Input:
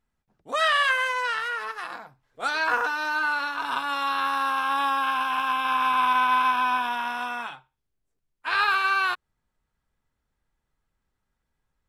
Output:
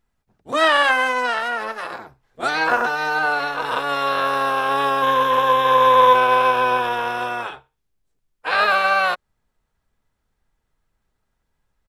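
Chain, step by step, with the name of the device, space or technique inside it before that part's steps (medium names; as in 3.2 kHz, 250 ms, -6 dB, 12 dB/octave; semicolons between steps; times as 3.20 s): 5.02–6.15 s: rippled EQ curve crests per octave 1.1, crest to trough 11 dB; octave pedal (harmony voices -12 st -5 dB); trim +4 dB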